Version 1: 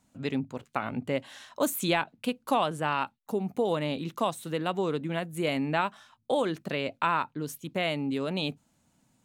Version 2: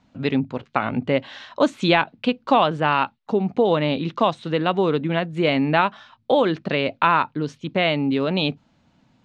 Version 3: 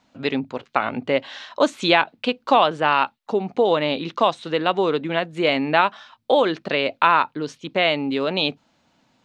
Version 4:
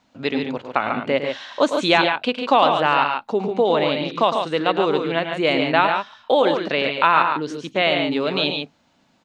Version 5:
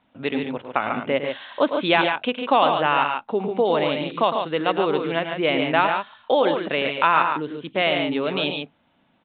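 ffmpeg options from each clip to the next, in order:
-af "lowpass=f=4600:w=0.5412,lowpass=f=4600:w=1.3066,volume=2.82"
-af "bass=f=250:g=-11,treble=f=4000:g=4,volume=1.19"
-af "aecho=1:1:107.9|142.9:0.355|0.501"
-af "aresample=8000,aresample=44100,volume=0.794"

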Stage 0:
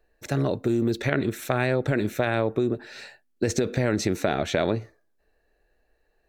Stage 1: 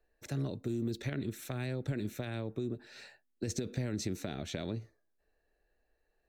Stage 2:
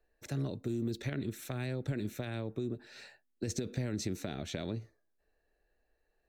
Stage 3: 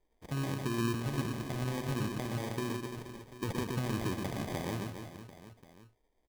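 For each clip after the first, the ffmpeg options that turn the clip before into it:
-filter_complex "[0:a]acrossover=split=310|3000[s0][s1][s2];[s1]acompressor=threshold=0.00631:ratio=2[s3];[s0][s3][s2]amix=inputs=3:normalize=0,volume=0.376"
-af anull
-af "aecho=1:1:120|276|478.8|742.4|1085:0.631|0.398|0.251|0.158|0.1,acrusher=samples=32:mix=1:aa=0.000001"

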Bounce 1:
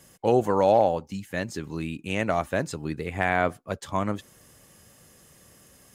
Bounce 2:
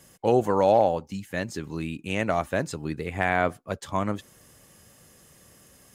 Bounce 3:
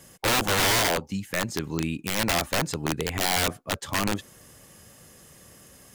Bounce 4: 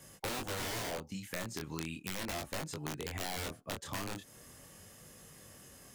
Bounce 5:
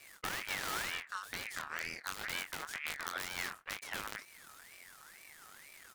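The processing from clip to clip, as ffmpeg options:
-af anull
-af "aeval=exprs='(mod(10.6*val(0)+1,2)-1)/10.6':c=same,volume=1.5"
-filter_complex "[0:a]flanger=delay=19.5:depth=7.6:speed=0.38,acrossover=split=620|5100[s0][s1][s2];[s0]acompressor=threshold=0.01:ratio=4[s3];[s1]acompressor=threshold=0.00794:ratio=4[s4];[s2]acompressor=threshold=0.00708:ratio=4[s5];[s3][s4][s5]amix=inputs=3:normalize=0,volume=0.891"
-filter_complex "[0:a]asplit=2[s0][s1];[s1]adelay=22,volume=0.376[s2];[s0][s2]amix=inputs=2:normalize=0,aeval=exprs='max(val(0),0)':c=same,aeval=exprs='val(0)*sin(2*PI*1800*n/s+1800*0.3/2.1*sin(2*PI*2.1*n/s))':c=same,volume=1.78"

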